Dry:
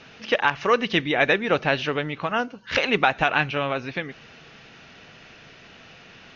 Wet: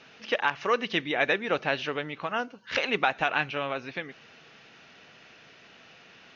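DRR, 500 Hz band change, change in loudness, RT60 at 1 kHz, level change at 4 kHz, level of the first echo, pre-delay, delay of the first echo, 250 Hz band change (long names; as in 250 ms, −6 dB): no reverb audible, −6.0 dB, −5.5 dB, no reverb audible, −5.0 dB, no echo audible, no reverb audible, no echo audible, −7.5 dB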